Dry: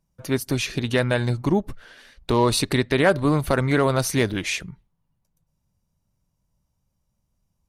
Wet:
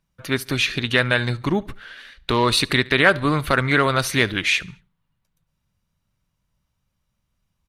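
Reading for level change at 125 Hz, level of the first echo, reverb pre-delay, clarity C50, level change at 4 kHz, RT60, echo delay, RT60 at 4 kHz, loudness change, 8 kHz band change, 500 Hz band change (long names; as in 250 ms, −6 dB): −1.0 dB, −23.5 dB, no reverb audible, no reverb audible, +7.0 dB, no reverb audible, 71 ms, no reverb audible, +2.5 dB, −1.0 dB, −1.0 dB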